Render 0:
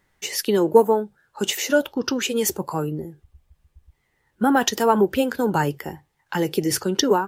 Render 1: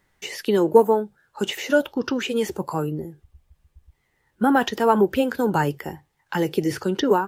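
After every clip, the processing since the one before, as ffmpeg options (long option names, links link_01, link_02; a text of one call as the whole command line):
ffmpeg -i in.wav -filter_complex "[0:a]acrossover=split=3400[link_01][link_02];[link_02]acompressor=threshold=-38dB:ratio=4:attack=1:release=60[link_03];[link_01][link_03]amix=inputs=2:normalize=0" out.wav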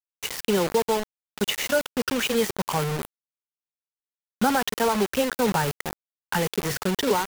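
ffmpeg -i in.wav -af "equalizer=frequency=320:width=3.8:gain=-14.5,alimiter=limit=-14.5dB:level=0:latency=1:release=279,acrusher=bits=4:mix=0:aa=0.000001,volume=2dB" out.wav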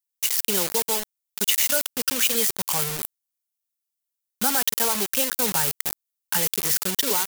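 ffmpeg -i in.wav -af "crystalizer=i=6.5:c=0,volume=-7.5dB" out.wav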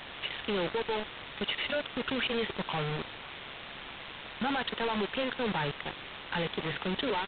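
ffmpeg -i in.wav -af "aeval=exprs='val(0)+0.5*0.0891*sgn(val(0))':channel_layout=same,tremolo=f=140:d=0.519,aresample=8000,asoftclip=type=tanh:threshold=-27dB,aresample=44100" out.wav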